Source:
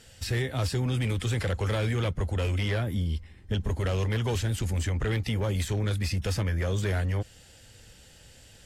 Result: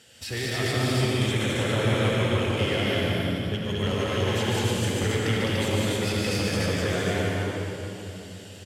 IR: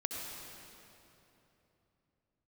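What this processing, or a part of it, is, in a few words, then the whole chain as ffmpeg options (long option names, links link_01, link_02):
stadium PA: -filter_complex "[0:a]highpass=150,equalizer=frequency=3000:width_type=o:width=0.48:gain=4,aecho=1:1:145.8|207|291.5:0.708|0.794|0.794[link_01];[1:a]atrim=start_sample=2205[link_02];[link_01][link_02]afir=irnorm=-1:irlink=0,asettb=1/sr,asplit=3[link_03][link_04][link_05];[link_03]atrim=end=1.314[link_06];[link_04]atrim=start=1.31:end=2.5,asetpts=PTS-STARTPTS,afade=type=in:duration=0.004:curve=qsin,afade=type=out:start_time=1.186:duration=0.004:curve=qsin,bandreject=frequency=4700:width=7.1[link_07];[link_05]atrim=start=2.496[link_08];[link_06][link_07]acrossfade=duration=0.004:curve1=hsin:curve2=qsin[link_09];[link_09][link_08]acrossfade=duration=0.004:curve1=qsin:curve2=hsin"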